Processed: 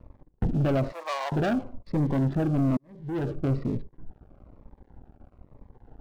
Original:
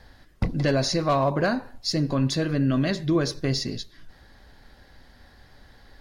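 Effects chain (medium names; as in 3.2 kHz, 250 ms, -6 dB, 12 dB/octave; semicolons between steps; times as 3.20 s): local Wiener filter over 25 samples; low-pass 1.6 kHz 24 dB/octave; waveshaping leveller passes 3; 0.92–1.32 s: high-pass 690 Hz 24 dB/octave; 2.77–3.32 s: fade in quadratic; Shepard-style phaser falling 1.1 Hz; trim -5.5 dB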